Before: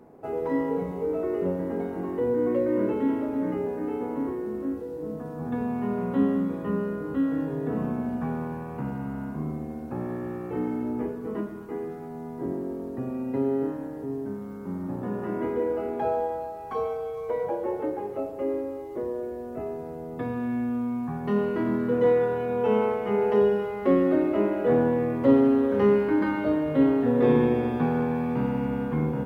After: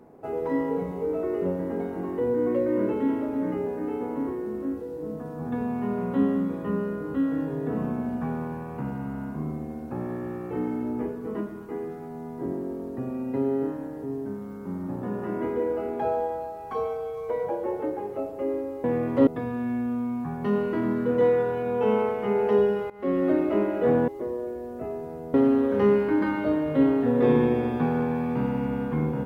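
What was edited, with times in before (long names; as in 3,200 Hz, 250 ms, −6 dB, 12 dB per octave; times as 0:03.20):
0:18.84–0:20.10: swap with 0:24.91–0:25.34
0:23.73–0:24.13: fade in, from −19 dB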